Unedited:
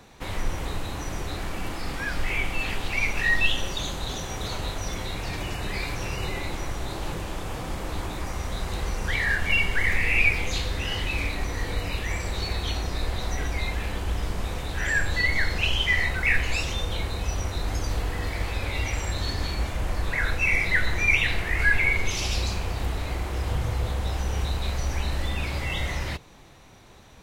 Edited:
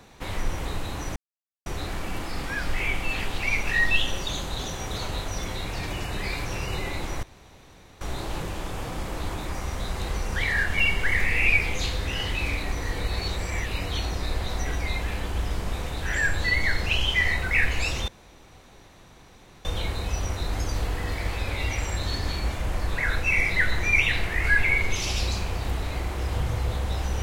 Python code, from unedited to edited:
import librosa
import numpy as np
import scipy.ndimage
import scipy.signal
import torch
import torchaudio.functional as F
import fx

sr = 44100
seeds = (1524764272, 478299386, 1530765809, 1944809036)

y = fx.edit(x, sr, fx.insert_silence(at_s=1.16, length_s=0.5),
    fx.insert_room_tone(at_s=6.73, length_s=0.78),
    fx.reverse_span(start_s=11.8, length_s=0.82),
    fx.insert_room_tone(at_s=16.8, length_s=1.57), tone=tone)